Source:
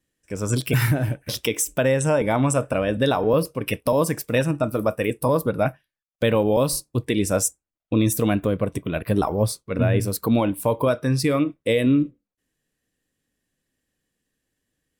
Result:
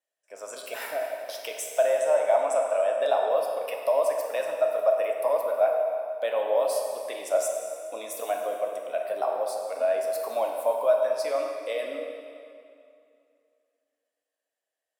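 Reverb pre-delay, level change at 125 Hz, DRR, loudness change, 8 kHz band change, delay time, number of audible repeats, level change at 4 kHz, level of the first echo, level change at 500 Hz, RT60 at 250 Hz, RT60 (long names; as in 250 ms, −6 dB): 7 ms, below −40 dB, 1.0 dB, −4.5 dB, −10.0 dB, no echo audible, no echo audible, −9.5 dB, no echo audible, −1.0 dB, 2.5 s, 2.5 s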